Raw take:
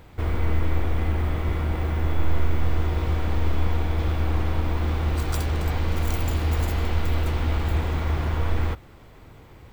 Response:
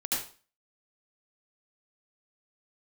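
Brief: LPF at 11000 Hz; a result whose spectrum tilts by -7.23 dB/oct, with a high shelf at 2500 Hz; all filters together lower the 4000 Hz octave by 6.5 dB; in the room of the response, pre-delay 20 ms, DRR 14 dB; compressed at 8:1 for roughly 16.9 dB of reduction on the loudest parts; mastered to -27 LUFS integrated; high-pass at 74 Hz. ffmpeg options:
-filter_complex "[0:a]highpass=74,lowpass=11k,highshelf=f=2.5k:g=-6.5,equalizer=f=4k:t=o:g=-3,acompressor=threshold=-41dB:ratio=8,asplit=2[a][b];[1:a]atrim=start_sample=2205,adelay=20[c];[b][c]afir=irnorm=-1:irlink=0,volume=-20dB[d];[a][d]amix=inputs=2:normalize=0,volume=17.5dB"

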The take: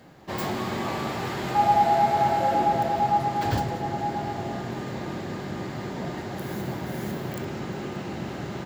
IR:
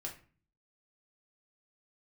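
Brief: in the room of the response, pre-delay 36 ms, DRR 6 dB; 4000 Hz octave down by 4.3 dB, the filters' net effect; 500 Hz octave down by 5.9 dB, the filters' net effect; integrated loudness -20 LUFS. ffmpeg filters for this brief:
-filter_complex "[0:a]equalizer=f=500:t=o:g=-9,equalizer=f=4k:t=o:g=-5.5,asplit=2[a][b];[1:a]atrim=start_sample=2205,adelay=36[c];[b][c]afir=irnorm=-1:irlink=0,volume=-4.5dB[d];[a][d]amix=inputs=2:normalize=0,volume=9.5dB"

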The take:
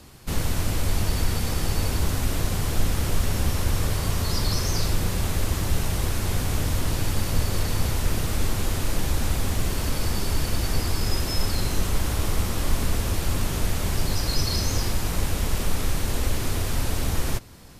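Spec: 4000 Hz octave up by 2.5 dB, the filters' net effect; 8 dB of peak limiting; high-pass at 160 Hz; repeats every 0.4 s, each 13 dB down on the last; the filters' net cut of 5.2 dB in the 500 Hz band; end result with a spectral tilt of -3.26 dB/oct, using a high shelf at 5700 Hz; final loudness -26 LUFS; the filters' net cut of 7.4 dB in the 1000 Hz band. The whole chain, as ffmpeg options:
-af "highpass=160,equalizer=f=500:t=o:g=-4.5,equalizer=f=1k:t=o:g=-8.5,equalizer=f=4k:t=o:g=5,highshelf=f=5.7k:g=-3.5,alimiter=limit=-22.5dB:level=0:latency=1,aecho=1:1:400|800|1200:0.224|0.0493|0.0108,volume=5dB"

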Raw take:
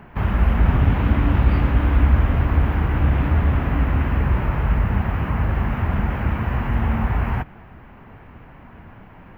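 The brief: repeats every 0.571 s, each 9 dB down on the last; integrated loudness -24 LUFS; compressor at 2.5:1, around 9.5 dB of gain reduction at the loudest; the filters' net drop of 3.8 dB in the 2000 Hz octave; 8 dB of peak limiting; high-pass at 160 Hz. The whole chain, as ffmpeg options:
-af "highpass=160,equalizer=f=2k:t=o:g=-5,acompressor=threshold=-35dB:ratio=2.5,alimiter=level_in=6dB:limit=-24dB:level=0:latency=1,volume=-6dB,aecho=1:1:571|1142|1713|2284:0.355|0.124|0.0435|0.0152,volume=15dB"

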